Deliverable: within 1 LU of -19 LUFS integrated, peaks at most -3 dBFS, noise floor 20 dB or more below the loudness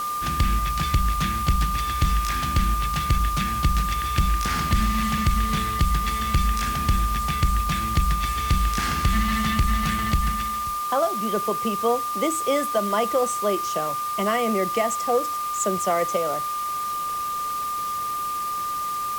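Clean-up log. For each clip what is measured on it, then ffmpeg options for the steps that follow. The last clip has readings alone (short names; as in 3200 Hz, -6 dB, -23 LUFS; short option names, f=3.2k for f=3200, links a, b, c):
steady tone 1200 Hz; tone level -25 dBFS; noise floor -28 dBFS; noise floor target -44 dBFS; loudness -24.0 LUFS; peak -10.5 dBFS; loudness target -19.0 LUFS
-> -af "bandreject=f=1.2k:w=30"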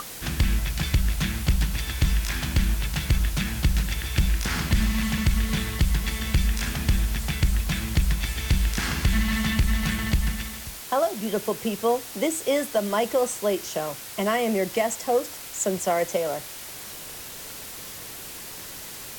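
steady tone none; noise floor -39 dBFS; noise floor target -46 dBFS
-> -af "afftdn=nr=7:nf=-39"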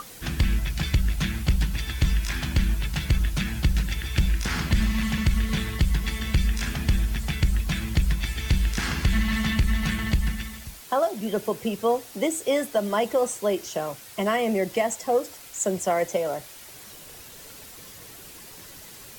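noise floor -45 dBFS; noise floor target -46 dBFS
-> -af "afftdn=nr=6:nf=-45"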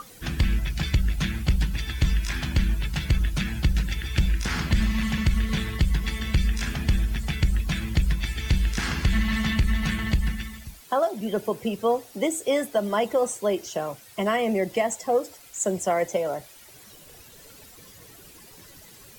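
noise floor -49 dBFS; loudness -26.0 LUFS; peak -13.0 dBFS; loudness target -19.0 LUFS
-> -af "volume=7dB"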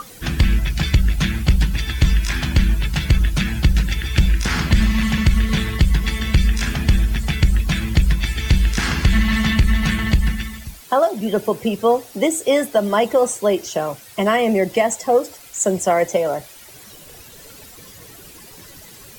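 loudness -19.0 LUFS; peak -6.0 dBFS; noise floor -42 dBFS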